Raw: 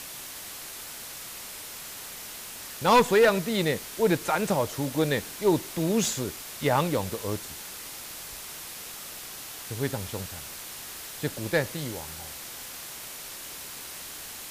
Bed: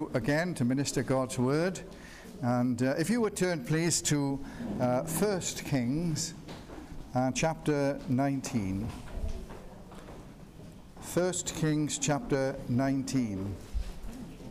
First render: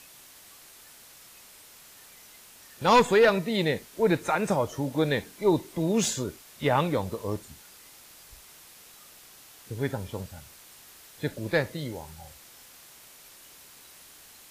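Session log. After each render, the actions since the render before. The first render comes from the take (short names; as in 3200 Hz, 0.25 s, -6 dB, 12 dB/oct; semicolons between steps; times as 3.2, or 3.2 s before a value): noise print and reduce 11 dB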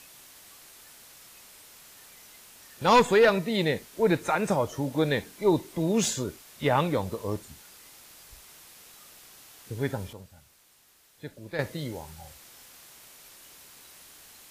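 10.13–11.59 gain -10 dB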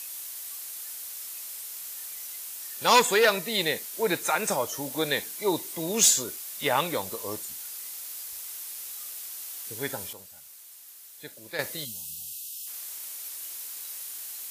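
RIAA curve recording; 11.85–12.67 spectral gain 250–2500 Hz -23 dB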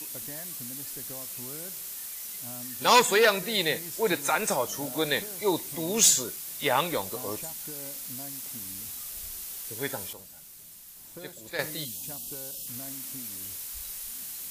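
add bed -17 dB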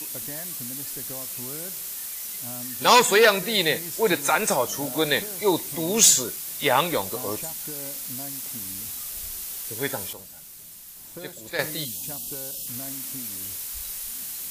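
gain +4.5 dB; limiter -3 dBFS, peak gain reduction 2 dB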